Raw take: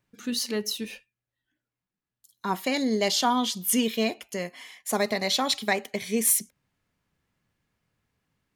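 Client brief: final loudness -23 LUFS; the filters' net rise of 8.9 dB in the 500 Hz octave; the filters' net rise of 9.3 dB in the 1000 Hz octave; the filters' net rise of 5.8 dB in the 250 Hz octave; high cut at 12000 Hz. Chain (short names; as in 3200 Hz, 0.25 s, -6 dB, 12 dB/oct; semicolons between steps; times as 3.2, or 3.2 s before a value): LPF 12000 Hz; bell 250 Hz +4.5 dB; bell 500 Hz +7.5 dB; bell 1000 Hz +8.5 dB; gain -2 dB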